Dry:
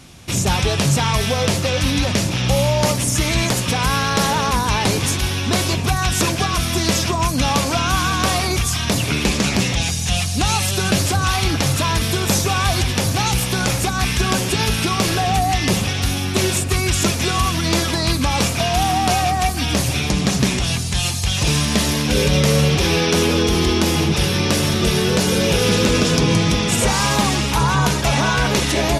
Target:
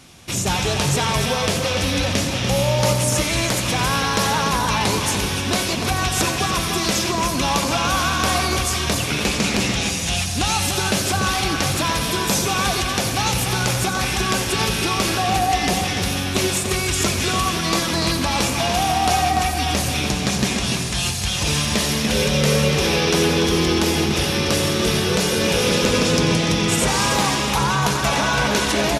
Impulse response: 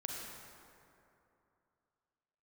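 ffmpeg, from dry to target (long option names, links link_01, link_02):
-filter_complex "[0:a]lowshelf=frequency=200:gain=-6.5,asplit=2[link_01][link_02];[link_02]adelay=291.5,volume=-6dB,highshelf=frequency=4000:gain=-6.56[link_03];[link_01][link_03]amix=inputs=2:normalize=0,asplit=2[link_04][link_05];[1:a]atrim=start_sample=2205,adelay=90[link_06];[link_05][link_06]afir=irnorm=-1:irlink=0,volume=-8.5dB[link_07];[link_04][link_07]amix=inputs=2:normalize=0,volume=-1.5dB"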